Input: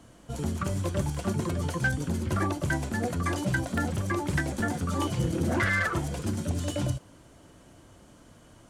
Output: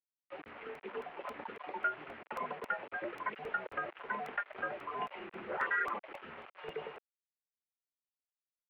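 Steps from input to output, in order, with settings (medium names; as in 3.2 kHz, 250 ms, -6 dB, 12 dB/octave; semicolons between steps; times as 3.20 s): random holes in the spectrogram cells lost 21%; in parallel at -1.5 dB: compression 10:1, threshold -36 dBFS, peak gain reduction 14.5 dB; on the sum: bit crusher 6-bit; mistuned SSB -140 Hz 560–2700 Hz; crackling interface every 0.27 s, samples 64, repeat, from 0.48 s; trim -6 dB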